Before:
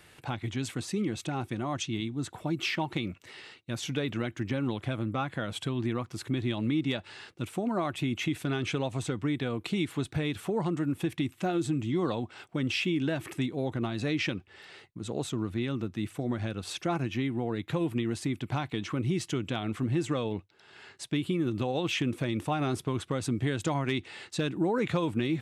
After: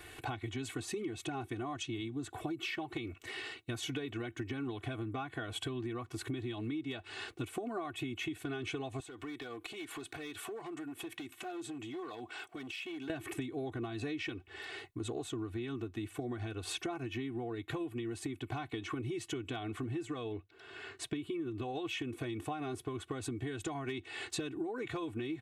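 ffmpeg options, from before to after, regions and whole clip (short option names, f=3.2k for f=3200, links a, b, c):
-filter_complex "[0:a]asettb=1/sr,asplit=3[a][b][c];[a]atrim=end=9.004[d];[b]atrim=start=9:end=13.1,asetpts=PTS-STARTPTS,afade=t=in:d=0.004:c=qsin,afade=t=out:st=4.096:d=0.004:c=qsin,asoftclip=type=hard:threshold=-24dB,highpass=f=510:p=1,acompressor=threshold=-45dB:ratio=8:attack=3.2:release=140:knee=1:detection=peak[e];[c]atrim=start=13.096[f];[d][e]acrossfade=d=0.004:c1=hsin:c2=qsin[g];[g][f]acrossfade=d=0.004:c1=qsin:c2=hsin,asettb=1/sr,asplit=3[h][i][j];[h]atrim=end=20.324[k];[i]atrim=start=20.32:end=21.63,asetpts=PTS-STARTPTS,afade=t=in:d=0.004:c=qsin,afade=t=out:st=1.306:d=0.004:c=qsin,highshelf=f=4.1k:g=-6,bandreject=f=810:w=10[l];[j]atrim=start=21.626[m];[k][l]acrossfade=d=0.004:c1=hsin:c2=qsin[n];[n][m]acrossfade=d=0.004:c1=qsin:c2=hsin,equalizer=f=5.2k:w=2.2:g=-5.5,aecho=1:1:2.7:0.92,acompressor=threshold=-38dB:ratio=12,volume=2.5dB"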